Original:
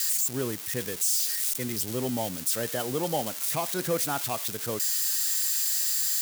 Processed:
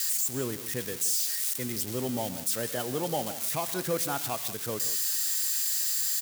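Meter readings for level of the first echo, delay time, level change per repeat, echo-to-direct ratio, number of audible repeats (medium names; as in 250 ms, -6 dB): -17.5 dB, 123 ms, no regular repeats, -13.0 dB, 2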